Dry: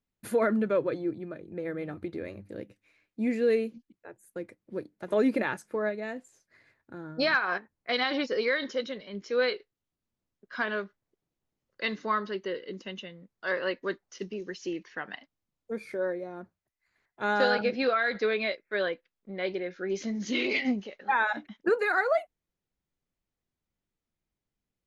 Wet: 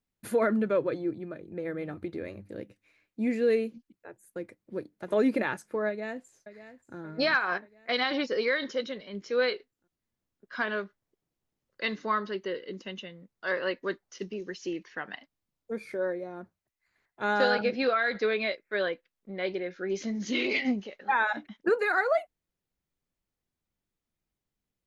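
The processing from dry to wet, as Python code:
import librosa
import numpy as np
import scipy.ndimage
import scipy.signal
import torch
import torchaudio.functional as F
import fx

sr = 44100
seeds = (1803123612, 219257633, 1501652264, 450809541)

y = fx.echo_throw(x, sr, start_s=5.88, length_s=1.09, ms=580, feedback_pct=55, wet_db=-13.5)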